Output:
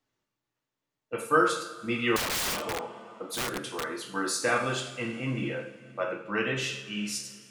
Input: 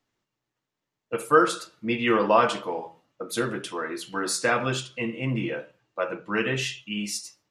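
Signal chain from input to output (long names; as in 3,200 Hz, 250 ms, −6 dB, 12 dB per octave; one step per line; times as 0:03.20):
coupled-rooms reverb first 0.53 s, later 3.1 s, from −18 dB, DRR 2 dB
0:02.16–0:03.84: wrap-around overflow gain 20.5 dB
level −4.5 dB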